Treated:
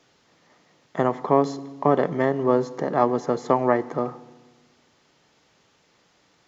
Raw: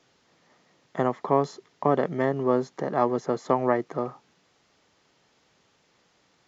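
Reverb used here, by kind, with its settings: FDN reverb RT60 1.3 s, low-frequency decay 1.4×, high-frequency decay 0.8×, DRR 15 dB; trim +3 dB

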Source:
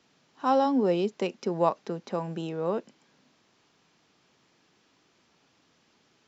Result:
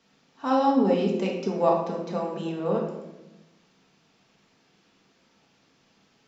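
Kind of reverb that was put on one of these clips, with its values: simulated room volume 380 m³, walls mixed, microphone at 1.6 m; trim -2 dB

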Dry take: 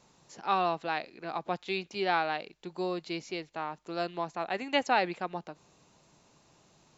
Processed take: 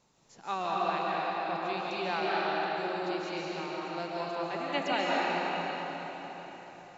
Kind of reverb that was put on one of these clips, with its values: algorithmic reverb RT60 4.6 s, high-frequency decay 0.85×, pre-delay 105 ms, DRR -6.5 dB; trim -6.5 dB

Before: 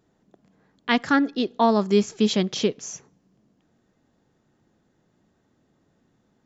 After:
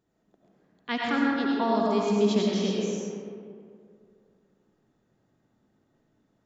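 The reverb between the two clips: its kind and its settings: algorithmic reverb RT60 2.4 s, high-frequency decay 0.45×, pre-delay 50 ms, DRR -4 dB; trim -9.5 dB

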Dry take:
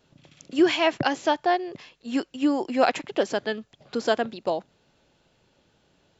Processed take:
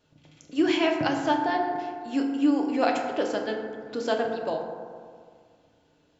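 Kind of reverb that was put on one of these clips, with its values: FDN reverb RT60 2 s, low-frequency decay 1.05×, high-frequency decay 0.35×, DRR 1 dB; trim -5 dB

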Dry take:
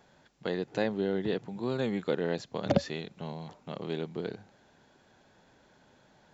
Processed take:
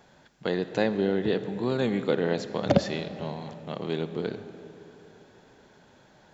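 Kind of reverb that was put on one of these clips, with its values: algorithmic reverb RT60 3.7 s, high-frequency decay 0.6×, pre-delay 5 ms, DRR 11 dB; trim +4.5 dB

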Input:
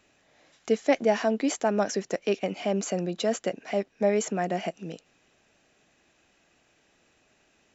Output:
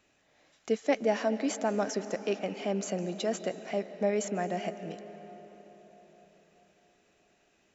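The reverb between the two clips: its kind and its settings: algorithmic reverb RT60 4.9 s, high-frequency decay 0.55×, pre-delay 115 ms, DRR 11.5 dB; trim -4.5 dB

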